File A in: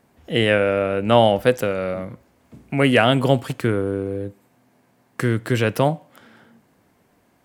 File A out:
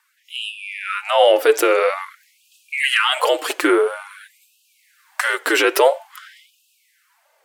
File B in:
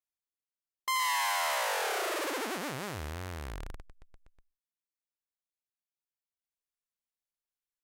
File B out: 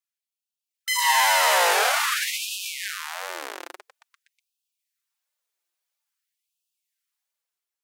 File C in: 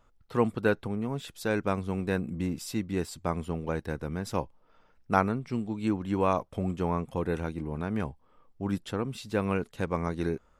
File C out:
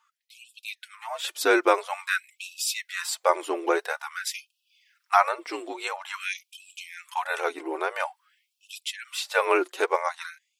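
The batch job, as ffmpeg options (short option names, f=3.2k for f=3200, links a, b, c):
-af "lowshelf=f=360:g=-9,alimiter=limit=-14dB:level=0:latency=1:release=77,afreqshift=-58,flanger=delay=3.3:depth=2.5:regen=15:speed=1.5:shape=sinusoidal,dynaudnorm=f=250:g=7:m=9dB,afftfilt=real='re*gte(b*sr/1024,270*pow(2500/270,0.5+0.5*sin(2*PI*0.49*pts/sr)))':imag='im*gte(b*sr/1024,270*pow(2500/270,0.5+0.5*sin(2*PI*0.49*pts/sr)))':win_size=1024:overlap=0.75,volume=7dB"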